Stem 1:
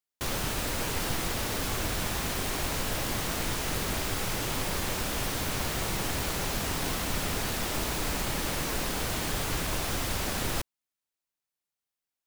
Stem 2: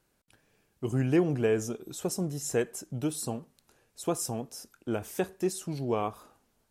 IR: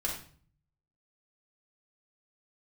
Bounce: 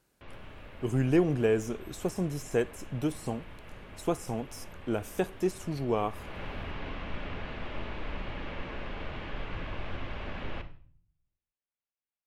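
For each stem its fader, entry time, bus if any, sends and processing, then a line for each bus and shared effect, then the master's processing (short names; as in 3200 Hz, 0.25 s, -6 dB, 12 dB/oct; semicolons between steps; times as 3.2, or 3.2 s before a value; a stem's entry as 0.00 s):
6.05 s -19 dB -> 6.39 s -9.5 dB, 0.00 s, send -8.5 dB, Chebyshev low-pass 2800 Hz, order 3
+0.5 dB, 0.00 s, no send, de-esser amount 95%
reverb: on, RT60 0.45 s, pre-delay 4 ms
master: dry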